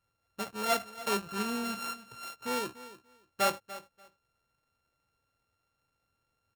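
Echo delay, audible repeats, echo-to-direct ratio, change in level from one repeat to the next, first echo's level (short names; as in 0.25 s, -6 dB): 0.291 s, 2, -16.0 dB, -15.5 dB, -16.0 dB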